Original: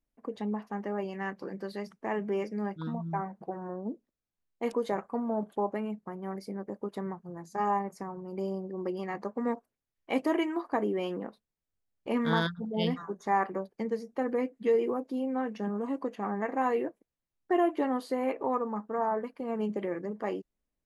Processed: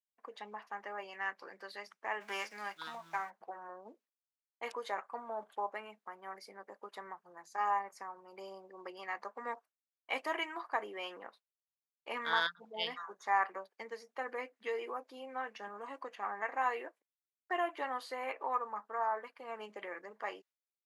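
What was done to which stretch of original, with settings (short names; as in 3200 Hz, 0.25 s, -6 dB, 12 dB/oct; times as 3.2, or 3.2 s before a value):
2.2–3.29 spectral whitening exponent 0.6
whole clip: gate with hold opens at -49 dBFS; HPF 1100 Hz 12 dB/oct; high shelf 6400 Hz -9.5 dB; gain +2.5 dB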